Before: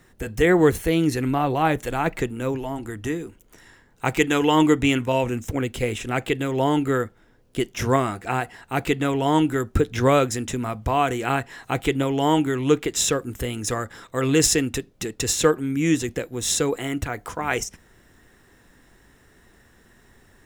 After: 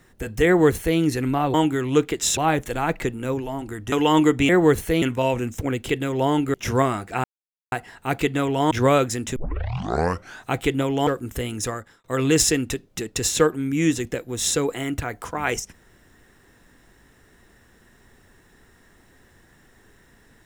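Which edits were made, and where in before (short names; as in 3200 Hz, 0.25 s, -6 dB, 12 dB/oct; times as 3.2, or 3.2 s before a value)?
0.46–0.99 copy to 4.92
3.09–4.35 cut
5.79–6.28 cut
6.93–7.68 cut
8.38 insert silence 0.48 s
9.37–9.92 cut
10.57 tape start 1.12 s
12.28–13.11 move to 1.54
13.64–14.08 fade out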